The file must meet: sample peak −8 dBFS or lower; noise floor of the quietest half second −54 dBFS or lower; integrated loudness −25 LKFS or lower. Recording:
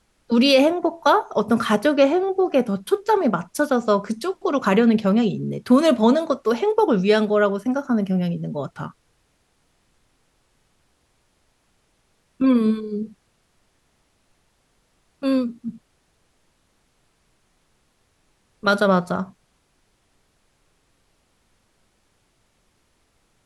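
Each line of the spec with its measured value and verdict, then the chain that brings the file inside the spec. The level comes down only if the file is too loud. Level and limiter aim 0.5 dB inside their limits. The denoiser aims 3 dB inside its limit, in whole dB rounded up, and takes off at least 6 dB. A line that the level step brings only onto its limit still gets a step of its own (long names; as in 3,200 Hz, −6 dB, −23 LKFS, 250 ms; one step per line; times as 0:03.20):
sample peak −5.5 dBFS: out of spec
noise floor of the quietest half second −65 dBFS: in spec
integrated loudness −20.0 LKFS: out of spec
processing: level −5.5 dB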